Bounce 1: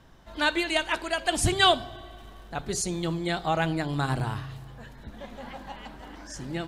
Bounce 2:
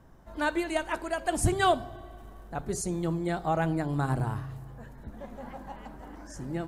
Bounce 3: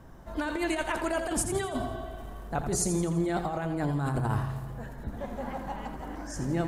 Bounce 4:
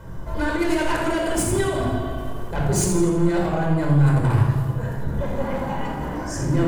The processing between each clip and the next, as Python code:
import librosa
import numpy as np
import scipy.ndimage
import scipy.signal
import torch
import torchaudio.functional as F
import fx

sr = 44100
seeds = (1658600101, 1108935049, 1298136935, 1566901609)

y1 = fx.peak_eq(x, sr, hz=3500.0, db=-14.0, octaves=1.7)
y2 = fx.over_compress(y1, sr, threshold_db=-32.0, ratio=-1.0)
y2 = fx.echo_feedback(y2, sr, ms=84, feedback_pct=52, wet_db=-9)
y2 = F.gain(torch.from_numpy(y2), 2.5).numpy()
y3 = 10.0 ** (-29.0 / 20.0) * np.tanh(y2 / 10.0 ** (-29.0 / 20.0))
y3 = fx.room_shoebox(y3, sr, seeds[0], volume_m3=2600.0, walls='furnished', distance_m=4.9)
y3 = F.gain(torch.from_numpy(y3), 6.5).numpy()